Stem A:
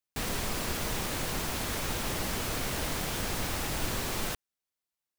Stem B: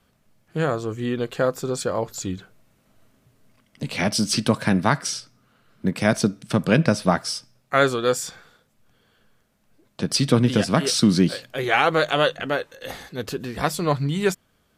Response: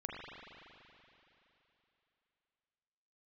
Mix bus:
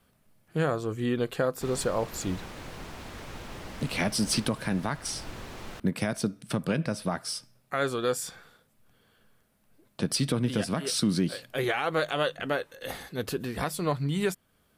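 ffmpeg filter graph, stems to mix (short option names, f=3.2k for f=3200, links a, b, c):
-filter_complex "[0:a]aemphasis=mode=reproduction:type=cd,adelay=1450,volume=-7.5dB[a];[1:a]aexciter=amount=1.6:drive=8.8:freq=8.9k,volume=-2.5dB[b];[a][b]amix=inputs=2:normalize=0,highshelf=f=8.9k:g=-5.5,alimiter=limit=-16dB:level=0:latency=1:release=353"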